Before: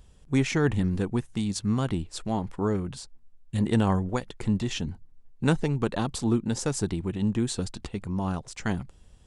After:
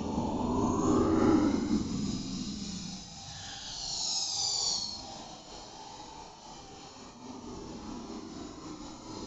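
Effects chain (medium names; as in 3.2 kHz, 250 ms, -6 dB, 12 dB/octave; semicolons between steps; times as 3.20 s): formant-preserving pitch shift -6.5 st; phaser 1.1 Hz, delay 1.3 ms, feedback 75%; steep low-pass 6.9 kHz 96 dB/octave; echo that smears into a reverb 741 ms, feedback 44%, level -13 dB; frequency shift -51 Hz; tilt EQ +4.5 dB/octave; Paulstretch 11×, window 0.05 s, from 2.61 s; dynamic bell 2.1 kHz, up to -5 dB, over -49 dBFS, Q 1.6; random flutter of the level, depth 60%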